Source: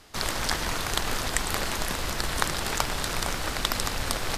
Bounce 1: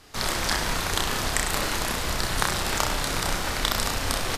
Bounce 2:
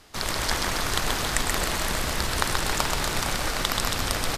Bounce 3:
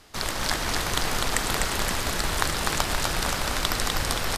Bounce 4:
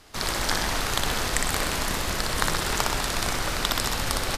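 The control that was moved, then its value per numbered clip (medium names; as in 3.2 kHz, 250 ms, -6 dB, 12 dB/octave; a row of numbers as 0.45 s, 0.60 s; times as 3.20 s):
reverse bouncing-ball echo, first gap: 30 ms, 130 ms, 250 ms, 60 ms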